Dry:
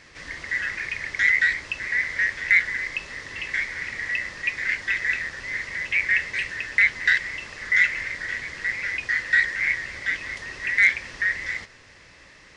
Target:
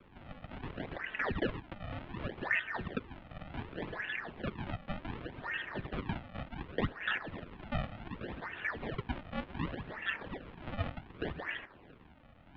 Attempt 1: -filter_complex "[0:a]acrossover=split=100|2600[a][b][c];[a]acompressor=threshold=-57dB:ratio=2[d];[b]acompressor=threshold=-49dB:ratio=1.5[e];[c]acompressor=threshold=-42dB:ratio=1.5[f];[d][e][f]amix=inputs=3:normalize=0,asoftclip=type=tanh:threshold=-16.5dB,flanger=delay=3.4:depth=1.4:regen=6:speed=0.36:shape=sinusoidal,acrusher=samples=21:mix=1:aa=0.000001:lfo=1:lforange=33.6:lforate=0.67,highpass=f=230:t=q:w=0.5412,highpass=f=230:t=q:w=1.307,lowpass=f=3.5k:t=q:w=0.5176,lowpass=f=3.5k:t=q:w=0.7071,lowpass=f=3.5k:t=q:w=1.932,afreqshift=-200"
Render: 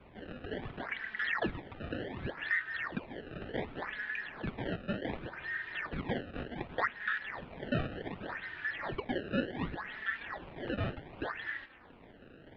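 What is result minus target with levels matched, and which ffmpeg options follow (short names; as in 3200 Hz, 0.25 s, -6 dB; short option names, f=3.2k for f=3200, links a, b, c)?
decimation with a swept rate: distortion -9 dB
-filter_complex "[0:a]acrossover=split=100|2600[a][b][c];[a]acompressor=threshold=-57dB:ratio=2[d];[b]acompressor=threshold=-49dB:ratio=1.5[e];[c]acompressor=threshold=-42dB:ratio=1.5[f];[d][e][f]amix=inputs=3:normalize=0,asoftclip=type=tanh:threshold=-16.5dB,flanger=delay=3.4:depth=1.4:regen=6:speed=0.36:shape=sinusoidal,acrusher=samples=42:mix=1:aa=0.000001:lfo=1:lforange=67.2:lforate=0.67,highpass=f=230:t=q:w=0.5412,highpass=f=230:t=q:w=1.307,lowpass=f=3.5k:t=q:w=0.5176,lowpass=f=3.5k:t=q:w=0.7071,lowpass=f=3.5k:t=q:w=1.932,afreqshift=-200"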